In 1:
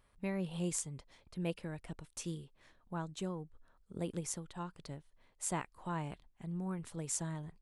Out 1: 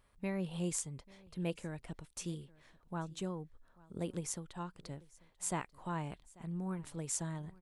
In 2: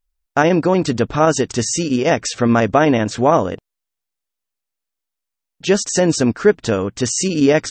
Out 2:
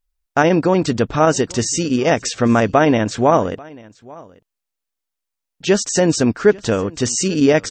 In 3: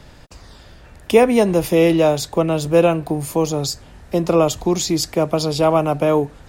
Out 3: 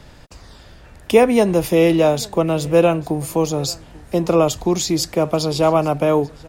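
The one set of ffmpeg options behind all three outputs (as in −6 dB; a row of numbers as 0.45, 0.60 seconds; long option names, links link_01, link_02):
-af "aecho=1:1:840:0.0668"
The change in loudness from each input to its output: 0.0, 0.0, 0.0 LU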